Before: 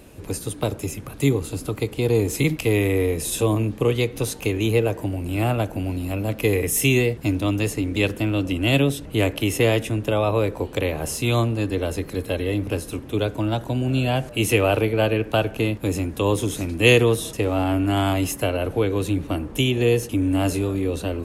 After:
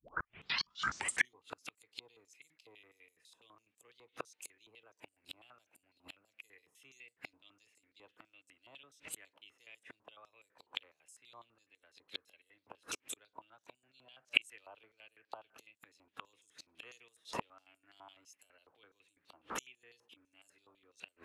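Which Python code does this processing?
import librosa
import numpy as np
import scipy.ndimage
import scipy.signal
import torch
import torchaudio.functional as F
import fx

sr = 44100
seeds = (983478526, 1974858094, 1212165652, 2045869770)

y = fx.tape_start_head(x, sr, length_s=1.41)
y = fx.gate_flip(y, sr, shuts_db=-19.0, range_db=-40)
y = fx.filter_held_bandpass(y, sr, hz=12.0, low_hz=980.0, high_hz=7900.0)
y = F.gain(torch.from_numpy(y), 16.5).numpy()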